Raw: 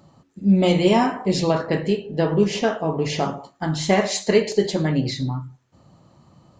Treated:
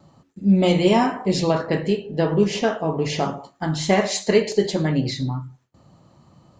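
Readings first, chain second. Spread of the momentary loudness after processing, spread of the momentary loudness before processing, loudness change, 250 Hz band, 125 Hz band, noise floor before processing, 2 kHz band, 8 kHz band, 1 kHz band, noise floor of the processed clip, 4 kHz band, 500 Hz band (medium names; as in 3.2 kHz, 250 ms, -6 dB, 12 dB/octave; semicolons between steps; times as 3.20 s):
10 LU, 10 LU, 0.0 dB, 0.0 dB, 0.0 dB, -60 dBFS, 0.0 dB, 0.0 dB, 0.0 dB, -61 dBFS, 0.0 dB, 0.0 dB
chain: gate with hold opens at -51 dBFS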